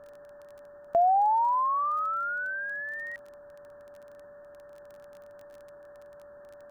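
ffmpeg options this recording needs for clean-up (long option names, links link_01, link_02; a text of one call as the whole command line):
ffmpeg -i in.wav -af "adeclick=threshold=4,bandreject=frequency=580:width=30,afwtdn=0.0035" out.wav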